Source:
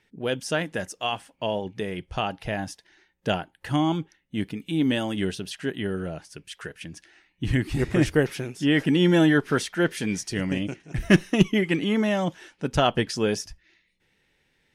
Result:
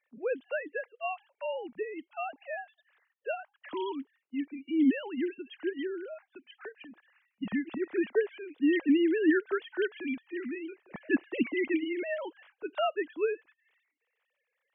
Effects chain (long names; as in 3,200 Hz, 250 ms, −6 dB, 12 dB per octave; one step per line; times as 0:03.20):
three sine waves on the formant tracks
level −7 dB